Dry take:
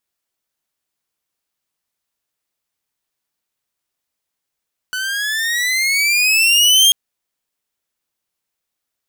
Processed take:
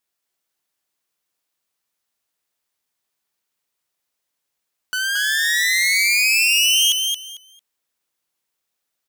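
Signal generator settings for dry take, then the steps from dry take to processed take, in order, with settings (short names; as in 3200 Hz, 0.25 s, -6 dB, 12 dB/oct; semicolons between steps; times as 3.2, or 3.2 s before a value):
gliding synth tone saw, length 1.99 s, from 1490 Hz, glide +13.5 st, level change +13 dB, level -4.5 dB
low shelf 160 Hz -7 dB; compressor 4:1, threshold -16 dBFS; on a send: feedback echo 0.224 s, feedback 20%, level -4.5 dB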